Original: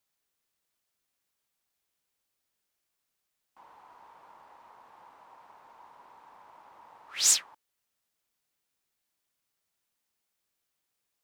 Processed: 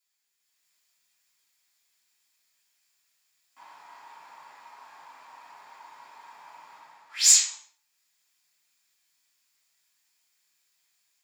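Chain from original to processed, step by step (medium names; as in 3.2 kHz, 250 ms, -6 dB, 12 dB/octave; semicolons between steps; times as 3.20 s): tilt shelf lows -8 dB; level rider gain up to 7.5 dB; reverberation RT60 0.55 s, pre-delay 3 ms, DRR -6 dB; trim -9 dB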